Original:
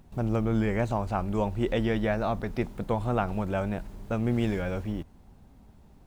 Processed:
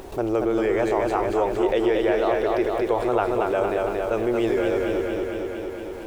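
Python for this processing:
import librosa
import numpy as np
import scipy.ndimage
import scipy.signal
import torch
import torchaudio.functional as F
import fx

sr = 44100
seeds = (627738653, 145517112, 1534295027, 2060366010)

y = fx.low_shelf_res(x, sr, hz=270.0, db=-11.0, q=3.0)
y = fx.echo_feedback(y, sr, ms=229, feedback_pct=58, wet_db=-4)
y = fx.env_flatten(y, sr, amount_pct=50)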